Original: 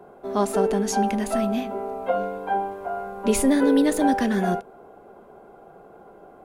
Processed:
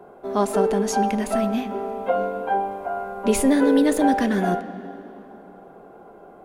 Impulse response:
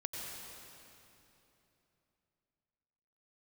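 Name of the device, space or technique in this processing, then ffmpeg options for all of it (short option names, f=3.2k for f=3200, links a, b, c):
filtered reverb send: -filter_complex "[0:a]asplit=2[a][b];[b]highpass=160,lowpass=3.9k[c];[1:a]atrim=start_sample=2205[d];[c][d]afir=irnorm=-1:irlink=0,volume=-10.5dB[e];[a][e]amix=inputs=2:normalize=0"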